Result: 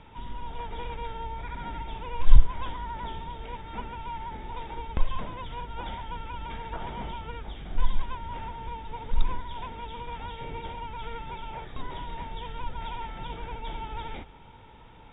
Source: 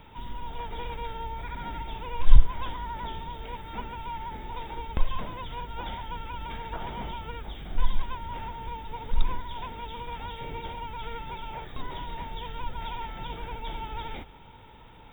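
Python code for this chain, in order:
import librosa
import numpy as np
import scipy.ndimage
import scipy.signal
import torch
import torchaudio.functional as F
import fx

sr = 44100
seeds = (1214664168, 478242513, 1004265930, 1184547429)

y = fx.air_absorb(x, sr, metres=96.0)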